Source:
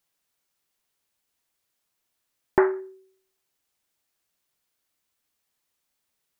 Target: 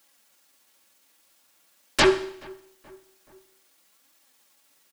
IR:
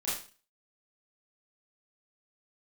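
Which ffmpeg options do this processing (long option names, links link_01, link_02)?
-filter_complex "[0:a]highpass=77,equalizer=frequency=100:width_type=o:width=1.2:gain=-7.5,bandreject=frequency=60:width_type=h:width=6,bandreject=frequency=120:width_type=h:width=6,bandreject=frequency=180:width_type=h:width=6,bandreject=frequency=240:width_type=h:width=6,bandreject=frequency=300:width_type=h:width=6,bandreject=frequency=360:width_type=h:width=6,bandreject=frequency=420:width_type=h:width=6,aecho=1:1:3.6:0.39,aeval=exprs='0.562*sin(PI/2*10*val(0)/0.562)':channel_layout=same,atempo=1.3,flanger=delay=2.9:depth=7.9:regen=53:speed=0.48:shape=triangular,asplit=2[link_01][link_02];[link_02]adelay=427,lowpass=frequency=1700:poles=1,volume=-23.5dB,asplit=2[link_03][link_04];[link_04]adelay=427,lowpass=frequency=1700:poles=1,volume=0.53,asplit=2[link_05][link_06];[link_06]adelay=427,lowpass=frequency=1700:poles=1,volume=0.53[link_07];[link_01][link_03][link_05][link_07]amix=inputs=4:normalize=0,asplit=2[link_08][link_09];[1:a]atrim=start_sample=2205,asetrate=23814,aresample=44100[link_10];[link_09][link_10]afir=irnorm=-1:irlink=0,volume=-22dB[link_11];[link_08][link_11]amix=inputs=2:normalize=0,volume=-5dB"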